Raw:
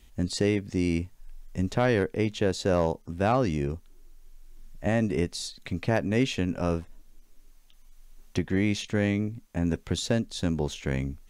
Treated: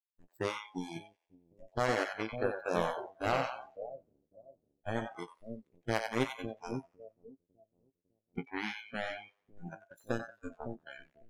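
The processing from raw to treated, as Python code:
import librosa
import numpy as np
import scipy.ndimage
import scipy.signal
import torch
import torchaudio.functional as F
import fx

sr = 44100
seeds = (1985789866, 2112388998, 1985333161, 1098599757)

y = fx.zero_step(x, sr, step_db=-39.0, at=(1.99, 2.44))
y = fx.power_curve(y, sr, exponent=3.0)
y = fx.doubler(y, sr, ms=18.0, db=-11)
y = fx.echo_split(y, sr, split_hz=580.0, low_ms=553, high_ms=91, feedback_pct=52, wet_db=-4)
y = fx.noise_reduce_blind(y, sr, reduce_db=26)
y = y * 10.0 ** (-1.5 / 20.0)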